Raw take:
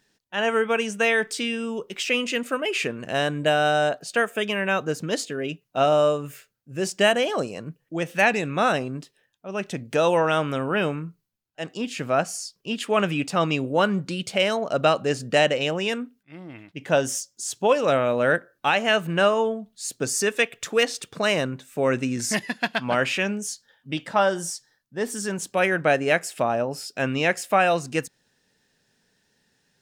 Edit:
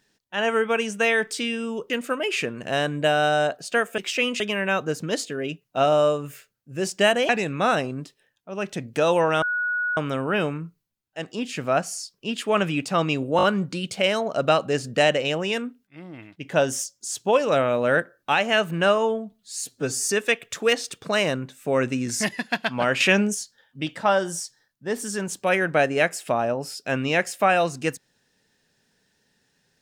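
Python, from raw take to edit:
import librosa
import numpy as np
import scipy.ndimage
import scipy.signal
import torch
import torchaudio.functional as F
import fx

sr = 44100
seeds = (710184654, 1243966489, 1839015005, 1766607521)

y = fx.edit(x, sr, fx.move(start_s=1.9, length_s=0.42, to_s=4.4),
    fx.cut(start_s=7.29, length_s=0.97),
    fx.insert_tone(at_s=10.39, length_s=0.55, hz=1460.0, db=-22.0),
    fx.stutter(start_s=13.79, slice_s=0.02, count=4),
    fx.stretch_span(start_s=19.68, length_s=0.51, factor=1.5),
    fx.clip_gain(start_s=23.11, length_s=0.34, db=6.5), tone=tone)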